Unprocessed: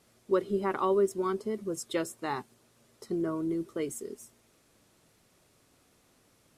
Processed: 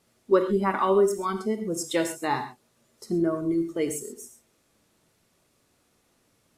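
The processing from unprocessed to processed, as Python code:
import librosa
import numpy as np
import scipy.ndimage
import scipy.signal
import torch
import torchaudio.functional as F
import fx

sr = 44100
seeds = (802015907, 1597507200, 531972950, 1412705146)

y = fx.noise_reduce_blind(x, sr, reduce_db=9)
y = fx.rev_gated(y, sr, seeds[0], gate_ms=150, shape='flat', drr_db=6.5)
y = y * librosa.db_to_amplitude(6.5)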